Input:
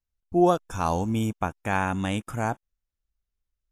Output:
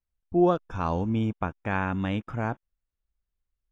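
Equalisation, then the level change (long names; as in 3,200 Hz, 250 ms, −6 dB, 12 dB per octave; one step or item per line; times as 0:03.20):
dynamic equaliser 770 Hz, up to −5 dB, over −37 dBFS, Q 2.8
high-frequency loss of the air 250 metres
0.0 dB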